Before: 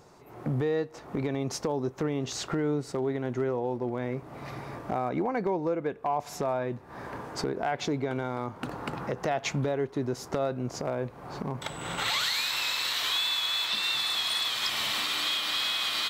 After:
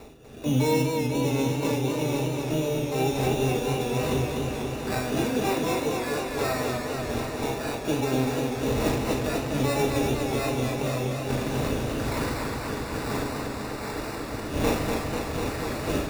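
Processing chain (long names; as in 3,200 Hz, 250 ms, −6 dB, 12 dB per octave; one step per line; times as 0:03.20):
adaptive Wiener filter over 25 samples
wind on the microphone 520 Hz −38 dBFS
low-pass filter 1,200 Hz 6 dB per octave
reversed playback
upward compression, threshold −43 dBFS
reversed playback
pitch-shifted copies added +12 semitones −4 dB
rotating-speaker cabinet horn 1.2 Hz
decimation without filtering 14×
notch comb filter 180 Hz
on a send: flutter between parallel walls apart 6.6 metres, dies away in 0.35 s
on the sum: feedback echo with a swinging delay time 246 ms, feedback 77%, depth 80 cents, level −4.5 dB
level +3.5 dB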